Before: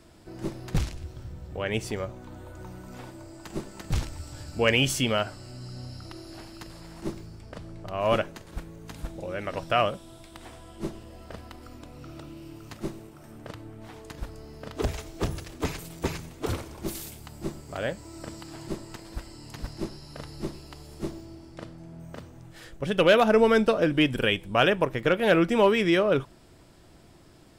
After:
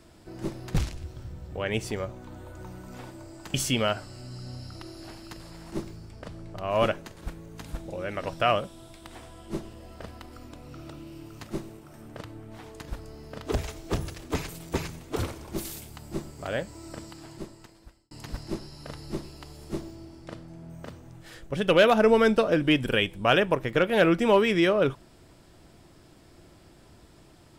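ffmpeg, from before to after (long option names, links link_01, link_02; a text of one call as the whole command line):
ffmpeg -i in.wav -filter_complex "[0:a]asplit=3[link_01][link_02][link_03];[link_01]atrim=end=3.542[link_04];[link_02]atrim=start=4.838:end=19.41,asetpts=PTS-STARTPTS,afade=type=out:start_time=13.292:duration=1.28[link_05];[link_03]atrim=start=19.41,asetpts=PTS-STARTPTS,afade=type=in:duration=0.004:curve=hsin[link_06];[link_05][link_06]concat=n=2:v=0:a=1[link_07];[link_04][link_07]acrossfade=duration=0.004:curve1=hsin:curve2=hsin" out.wav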